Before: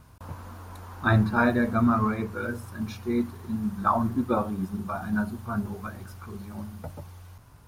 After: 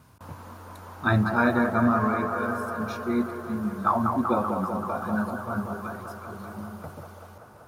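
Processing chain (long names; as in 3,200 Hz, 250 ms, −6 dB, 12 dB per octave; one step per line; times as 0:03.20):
high-pass filter 100 Hz
on a send: delay with a band-pass on its return 192 ms, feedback 79%, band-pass 780 Hz, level −4.5 dB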